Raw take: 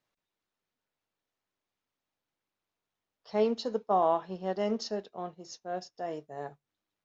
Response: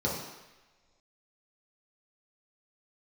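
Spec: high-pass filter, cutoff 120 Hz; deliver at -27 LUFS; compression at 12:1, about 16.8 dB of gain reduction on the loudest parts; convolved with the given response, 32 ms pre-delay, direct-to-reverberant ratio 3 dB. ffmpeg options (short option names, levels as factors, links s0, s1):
-filter_complex "[0:a]highpass=120,acompressor=threshold=0.0126:ratio=12,asplit=2[s0][s1];[1:a]atrim=start_sample=2205,adelay=32[s2];[s1][s2]afir=irnorm=-1:irlink=0,volume=0.251[s3];[s0][s3]amix=inputs=2:normalize=0,volume=4.73"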